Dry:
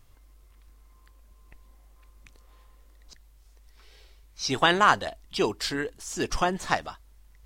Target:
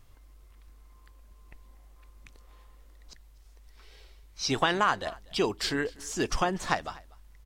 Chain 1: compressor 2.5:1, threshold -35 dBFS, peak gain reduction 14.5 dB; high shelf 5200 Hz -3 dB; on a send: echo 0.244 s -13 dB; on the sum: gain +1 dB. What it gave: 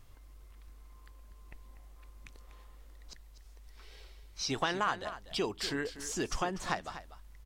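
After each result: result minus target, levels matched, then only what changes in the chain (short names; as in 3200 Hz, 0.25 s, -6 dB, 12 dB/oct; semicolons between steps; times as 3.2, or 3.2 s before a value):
echo-to-direct +10 dB; compressor: peak gain reduction +6.5 dB
change: echo 0.244 s -23 dB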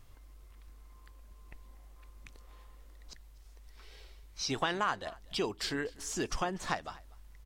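compressor: peak gain reduction +6.5 dB
change: compressor 2.5:1, threshold -24 dBFS, peak gain reduction 8 dB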